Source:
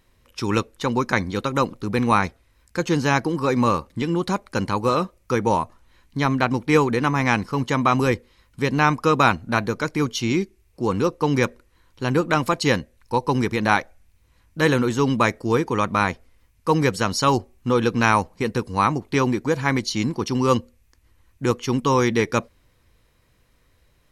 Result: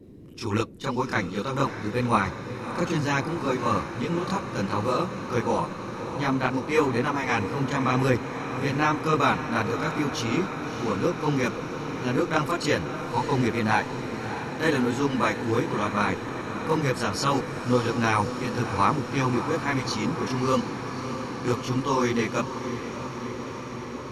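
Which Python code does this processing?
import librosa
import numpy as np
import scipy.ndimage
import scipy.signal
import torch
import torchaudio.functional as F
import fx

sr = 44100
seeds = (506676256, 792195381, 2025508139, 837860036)

p1 = fx.chorus_voices(x, sr, voices=2, hz=0.93, base_ms=27, depth_ms=3.4, mix_pct=60)
p2 = fx.dmg_noise_band(p1, sr, seeds[0], low_hz=58.0, high_hz=370.0, level_db=-45.0)
p3 = p2 + fx.echo_diffused(p2, sr, ms=622, feedback_pct=80, wet_db=-10.0, dry=0)
y = p3 * librosa.db_to_amplitude(-2.0)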